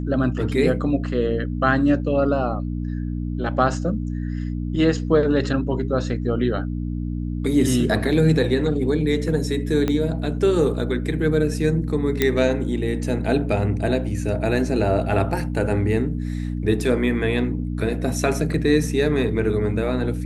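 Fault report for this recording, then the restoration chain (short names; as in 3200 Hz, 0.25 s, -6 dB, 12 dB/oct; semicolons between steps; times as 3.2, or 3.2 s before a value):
hum 60 Hz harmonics 5 -26 dBFS
9.88 pop -10 dBFS
12.22 pop -4 dBFS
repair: de-click; de-hum 60 Hz, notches 5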